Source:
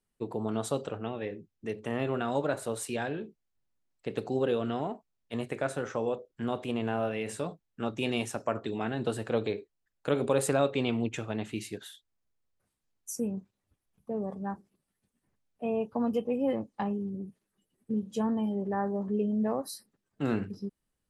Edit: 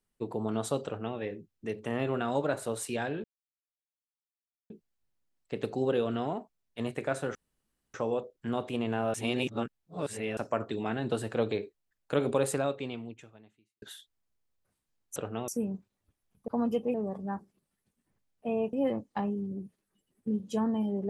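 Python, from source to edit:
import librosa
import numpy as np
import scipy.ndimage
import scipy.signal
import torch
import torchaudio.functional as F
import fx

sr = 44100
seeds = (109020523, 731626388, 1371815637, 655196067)

y = fx.edit(x, sr, fx.duplicate(start_s=0.85, length_s=0.32, to_s=13.11),
    fx.insert_silence(at_s=3.24, length_s=1.46),
    fx.insert_room_tone(at_s=5.89, length_s=0.59),
    fx.reverse_span(start_s=7.09, length_s=1.23),
    fx.fade_out_span(start_s=10.26, length_s=1.51, curve='qua'),
    fx.move(start_s=15.9, length_s=0.46, to_s=14.11), tone=tone)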